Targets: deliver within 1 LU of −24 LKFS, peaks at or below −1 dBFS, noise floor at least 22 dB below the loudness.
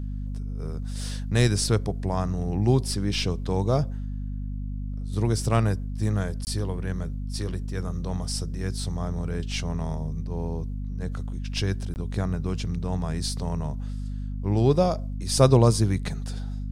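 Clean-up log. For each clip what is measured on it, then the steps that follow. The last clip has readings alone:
number of dropouts 2; longest dropout 19 ms; mains hum 50 Hz; hum harmonics up to 250 Hz; level of the hum −29 dBFS; integrated loudness −27.0 LKFS; sample peak −5.5 dBFS; target loudness −24.0 LKFS
→ repair the gap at 0:06.45/0:11.94, 19 ms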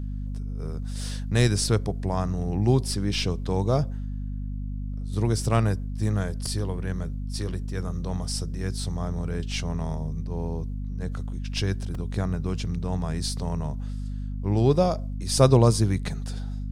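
number of dropouts 0; mains hum 50 Hz; hum harmonics up to 250 Hz; level of the hum −29 dBFS
→ mains-hum notches 50/100/150/200/250 Hz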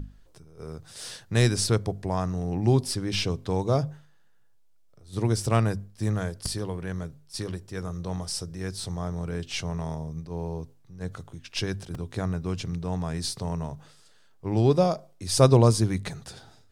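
mains hum none found; integrated loudness −27.5 LKFS; sample peak −6.5 dBFS; target loudness −24.0 LKFS
→ level +3.5 dB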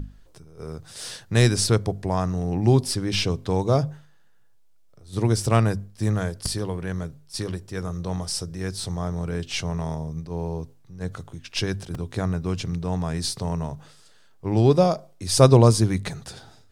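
integrated loudness −24.0 LKFS; sample peak −3.0 dBFS; background noise floor −53 dBFS

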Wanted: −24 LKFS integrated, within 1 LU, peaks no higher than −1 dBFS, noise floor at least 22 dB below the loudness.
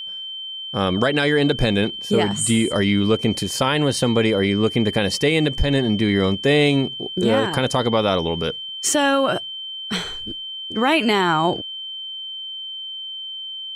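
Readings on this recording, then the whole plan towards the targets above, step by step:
interfering tone 3,100 Hz; level of the tone −29 dBFS; integrated loudness −20.5 LKFS; sample peak −7.0 dBFS; target loudness −24.0 LKFS
→ notch filter 3,100 Hz, Q 30
level −3.5 dB

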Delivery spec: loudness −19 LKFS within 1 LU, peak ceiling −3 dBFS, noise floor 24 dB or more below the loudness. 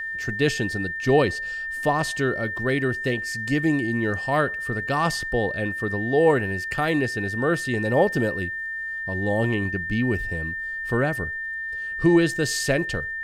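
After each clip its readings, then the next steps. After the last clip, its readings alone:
crackle rate 32 per second; interfering tone 1,800 Hz; level of the tone −28 dBFS; integrated loudness −24.0 LKFS; sample peak −7.5 dBFS; target loudness −19.0 LKFS
→ click removal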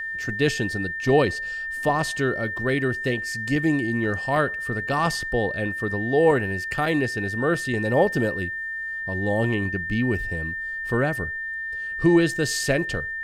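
crackle rate 0.23 per second; interfering tone 1,800 Hz; level of the tone −28 dBFS
→ notch filter 1,800 Hz, Q 30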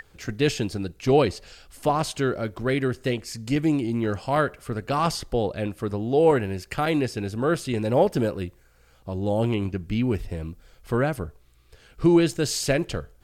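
interfering tone none found; integrated loudness −25.0 LKFS; sample peak −8.0 dBFS; target loudness −19.0 LKFS
→ level +6 dB
brickwall limiter −3 dBFS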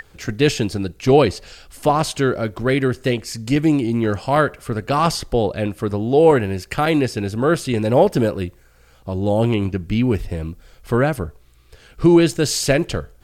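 integrated loudness −19.0 LKFS; sample peak −3.0 dBFS; background noise floor −51 dBFS

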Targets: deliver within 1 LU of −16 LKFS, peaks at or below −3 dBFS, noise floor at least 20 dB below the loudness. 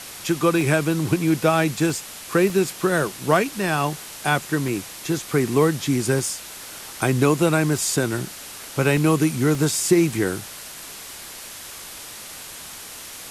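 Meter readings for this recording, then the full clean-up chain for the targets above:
number of dropouts 8; longest dropout 1.2 ms; background noise floor −38 dBFS; target noise floor −42 dBFS; integrated loudness −21.5 LKFS; sample peak −4.0 dBFS; target loudness −16.0 LKFS
→ repair the gap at 0:00.61/0:01.90/0:02.50/0:04.68/0:06.19/0:07.78/0:08.97/0:09.55, 1.2 ms
broadband denoise 6 dB, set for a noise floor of −38 dBFS
level +5.5 dB
brickwall limiter −3 dBFS

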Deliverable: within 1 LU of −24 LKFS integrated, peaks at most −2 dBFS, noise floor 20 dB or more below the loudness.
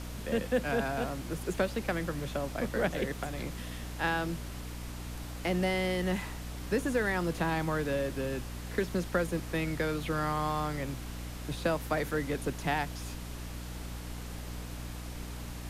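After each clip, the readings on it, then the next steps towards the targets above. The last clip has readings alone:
mains hum 60 Hz; hum harmonics up to 300 Hz; level of the hum −39 dBFS; background noise floor −41 dBFS; target noise floor −54 dBFS; integrated loudness −33.5 LKFS; sample peak −16.0 dBFS; target loudness −24.0 LKFS
→ hum removal 60 Hz, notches 5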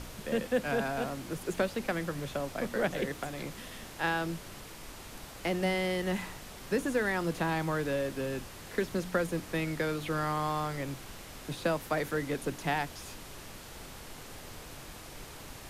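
mains hum none found; background noise floor −47 dBFS; target noise floor −54 dBFS
→ noise reduction from a noise print 7 dB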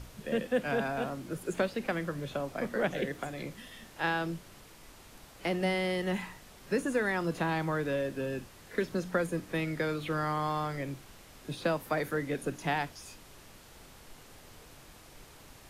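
background noise floor −54 dBFS; integrated loudness −33.5 LKFS; sample peak −16.5 dBFS; target loudness −24.0 LKFS
→ level +9.5 dB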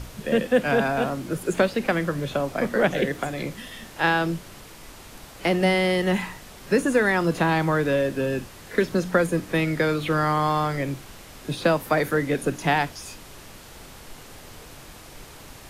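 integrated loudness −24.0 LKFS; sample peak −7.0 dBFS; background noise floor −45 dBFS

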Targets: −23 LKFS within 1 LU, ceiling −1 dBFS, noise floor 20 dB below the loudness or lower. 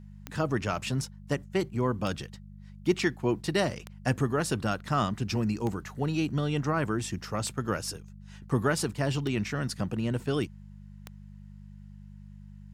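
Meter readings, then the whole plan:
number of clicks 7; mains hum 50 Hz; hum harmonics up to 200 Hz; level of the hum −45 dBFS; integrated loudness −30.5 LKFS; sample peak −12.0 dBFS; target loudness −23.0 LKFS
→ click removal
hum removal 50 Hz, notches 4
level +7.5 dB

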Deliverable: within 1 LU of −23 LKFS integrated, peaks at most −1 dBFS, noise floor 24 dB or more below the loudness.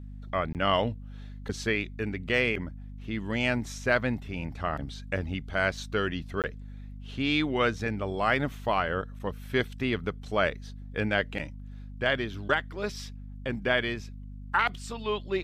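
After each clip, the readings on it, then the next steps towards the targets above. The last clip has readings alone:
number of dropouts 2; longest dropout 18 ms; mains hum 50 Hz; hum harmonics up to 250 Hz; level of the hum −39 dBFS; integrated loudness −29.5 LKFS; sample peak −11.5 dBFS; target loudness −23.0 LKFS
→ repair the gap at 0:00.53/0:06.42, 18 ms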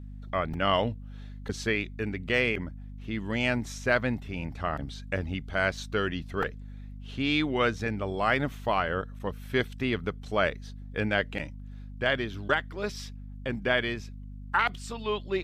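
number of dropouts 0; mains hum 50 Hz; hum harmonics up to 250 Hz; level of the hum −39 dBFS
→ hum removal 50 Hz, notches 5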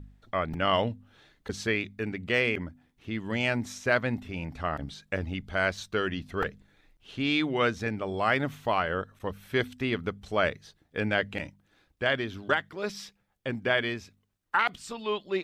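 mains hum none found; integrated loudness −30.0 LKFS; sample peak −12.0 dBFS; target loudness −23.0 LKFS
→ level +7 dB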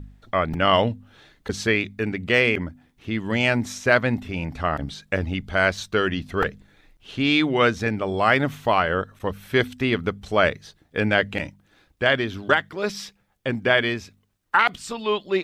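integrated loudness −23.0 LKFS; sample peak −5.0 dBFS; background noise floor −65 dBFS

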